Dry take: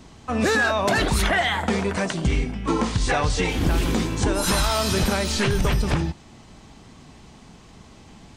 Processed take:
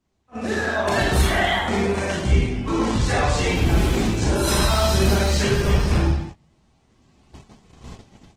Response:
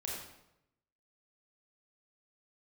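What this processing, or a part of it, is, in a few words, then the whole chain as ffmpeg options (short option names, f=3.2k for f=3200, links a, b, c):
speakerphone in a meeting room: -filter_complex "[1:a]atrim=start_sample=2205[a];[0:a][a]afir=irnorm=-1:irlink=0,dynaudnorm=f=490:g=3:m=15.5dB,agate=range=-19dB:threshold=-26dB:ratio=16:detection=peak,volume=-6dB" -ar 48000 -c:a libopus -b:a 16k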